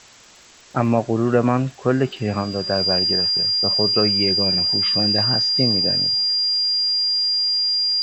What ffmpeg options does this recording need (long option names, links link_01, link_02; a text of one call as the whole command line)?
ffmpeg -i in.wav -af "adeclick=threshold=4,bandreject=frequency=4800:width=30,afwtdn=0.0063" out.wav